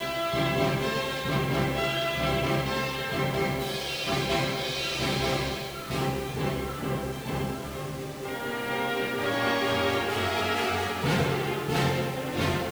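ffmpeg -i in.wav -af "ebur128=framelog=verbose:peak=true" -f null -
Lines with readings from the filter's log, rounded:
Integrated loudness:
  I:         -28.0 LUFS
  Threshold: -38.0 LUFS
Loudness range:
  LRA:         4.5 LU
  Threshold: -48.3 LUFS
  LRA low:   -31.2 LUFS
  LRA high:  -26.7 LUFS
True peak:
  Peak:      -12.7 dBFS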